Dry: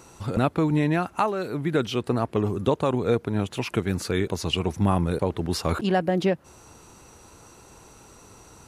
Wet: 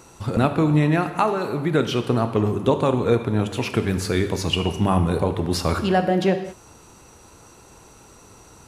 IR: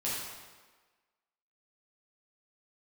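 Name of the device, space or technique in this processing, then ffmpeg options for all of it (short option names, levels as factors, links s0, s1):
keyed gated reverb: -filter_complex "[0:a]asplit=3[s0][s1][s2];[1:a]atrim=start_sample=2205[s3];[s1][s3]afir=irnorm=-1:irlink=0[s4];[s2]apad=whole_len=382361[s5];[s4][s5]sidechaingate=range=0.0224:threshold=0.00708:ratio=16:detection=peak,volume=0.282[s6];[s0][s6]amix=inputs=2:normalize=0,volume=1.19"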